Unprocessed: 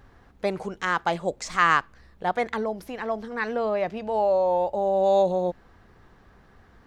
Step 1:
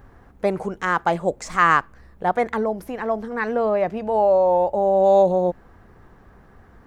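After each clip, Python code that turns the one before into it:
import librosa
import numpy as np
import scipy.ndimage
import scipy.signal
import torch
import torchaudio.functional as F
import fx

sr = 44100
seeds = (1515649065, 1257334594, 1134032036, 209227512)

y = fx.peak_eq(x, sr, hz=4000.0, db=-9.5, octaves=1.7)
y = y * librosa.db_to_amplitude(5.5)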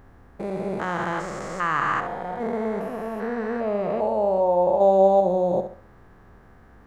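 y = fx.spec_steps(x, sr, hold_ms=400)
y = fx.room_flutter(y, sr, wall_m=11.6, rt60_s=0.41)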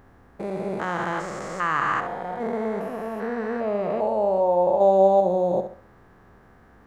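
y = fx.low_shelf(x, sr, hz=84.0, db=-7.0)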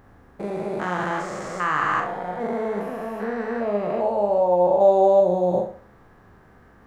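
y = fx.doubler(x, sr, ms=39.0, db=-5.0)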